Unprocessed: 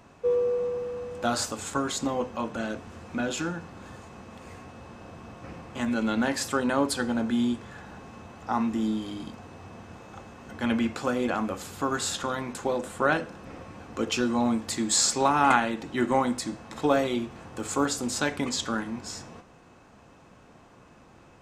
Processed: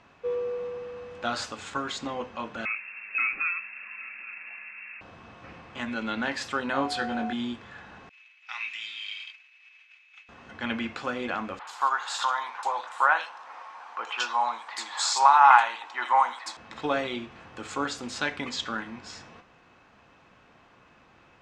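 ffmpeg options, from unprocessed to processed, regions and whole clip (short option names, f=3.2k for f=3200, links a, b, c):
-filter_complex "[0:a]asettb=1/sr,asplit=3[a][b][c];[a]atrim=end=2.654[d];[b]atrim=start=2.65:end=5.01,asetpts=PTS-STARTPTS,afade=t=in:d=0.004:c=qsin,afade=t=out:st=2.356:d=0.004:c=qsin,lowpass=f=2.4k:t=q:w=0.5098,lowpass=f=2.4k:t=q:w=0.6013,lowpass=f=2.4k:t=q:w=0.9,lowpass=f=2.4k:t=q:w=2.563,afreqshift=-2800,aecho=1:1:831:0.141,atrim=end_sample=104076[e];[c]atrim=start=5.006[f];[d][e]acrossfade=d=0.004:c1=hsin:c2=qsin[g];[g][f]acrossfade=d=0.004:c1=qsin:c2=hsin,asettb=1/sr,asplit=3[h][i][j];[h]atrim=end=6.734[k];[i]atrim=start=6.73:end=7.33,asetpts=PTS-STARTPTS,afade=t=in:d=0.004:c=qsin,afade=t=out:st=0.596:d=0.004:c=qsin,asplit=2[l][m];[m]adelay=22,volume=-4.5dB[n];[l][n]amix=inputs=2:normalize=0,atrim=end_sample=26460,aeval=exprs='val(0)+0.0355*sin(2*PI*730*n/s)':c=same[o];[j]atrim=start=7.326[p];[k][o]acrossfade=d=0.004:c1=hsin:c2=qsin[q];[q][p]acrossfade=d=0.004:c1=qsin:c2=hsin,asettb=1/sr,asplit=3[r][s][t];[r]atrim=end=8.094[u];[s]atrim=start=8.09:end=10.29,asetpts=PTS-STARTPTS,afade=t=in:d=0.004:c=qsin,afade=t=out:st=2.196:d=0.004:c=qsin,agate=range=-33dB:threshold=-37dB:ratio=3:release=100:detection=peak,highpass=f=2.4k:t=q:w=6.1,equalizer=f=5.5k:t=o:w=1.7:g=3[v];[t]atrim=start=10.286[w];[u][v]acrossfade=d=0.004:c1=hsin:c2=qsin[x];[x][w]acrossfade=d=0.004:c1=qsin:c2=hsin,asettb=1/sr,asplit=3[y][z][aa];[y]atrim=end=11.594[ab];[z]atrim=start=11.59:end=16.57,asetpts=PTS-STARTPTS,afade=t=in:d=0.004:c=qsin,afade=t=out:st=4.976:d=0.004:c=qsin,highpass=f=910:t=q:w=4,highshelf=f=7.6k:g=6.5,acrossover=split=2600[ac][ad];[ad]adelay=80[ae];[ac][ae]amix=inputs=2:normalize=0,atrim=end_sample=219618[af];[aa]atrim=start=16.566[ag];[ab][af]acrossfade=d=0.004:c1=hsin:c2=qsin[ah];[ah][ag]acrossfade=d=0.004:c1=qsin:c2=hsin,lowpass=2.9k,tiltshelf=f=1.3k:g=-7.5"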